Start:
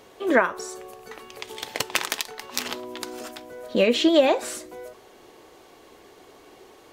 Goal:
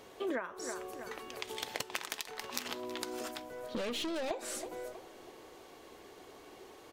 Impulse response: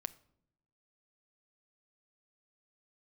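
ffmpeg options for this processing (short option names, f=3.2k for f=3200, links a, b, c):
-filter_complex "[0:a]asettb=1/sr,asplit=3[a][b][c];[a]atrim=end=3.484[d];[b]atrim=start=3.48:end=4.31,asetpts=PTS-STARTPTS,afade=t=in:d=0.004:c=qsin,afade=t=out:st=0.826:d=0.004:c=qsin,aeval=exprs='(tanh(20*val(0)+0.4)-tanh(0.4))/20':c=same[e];[c]atrim=start=4.306[f];[d][e]acrossfade=d=0.004:c1=hsin:c2=qsin[g];[g][f]acrossfade=d=0.004:c1=qsin:c2=hsin,asplit=2[h][i];[i]adelay=321,lowpass=f=3.5k:p=1,volume=-19dB,asplit=2[j][k];[k]adelay=321,lowpass=f=3.5k:p=1,volume=0.46,asplit=2[l][m];[m]adelay=321,lowpass=f=3.5k:p=1,volume=0.46,asplit=2[n][o];[o]adelay=321,lowpass=f=3.5k:p=1,volume=0.46[p];[j][l][n][p]amix=inputs=4:normalize=0[q];[h][q]amix=inputs=2:normalize=0,acompressor=threshold=-30dB:ratio=8,volume=-3.5dB"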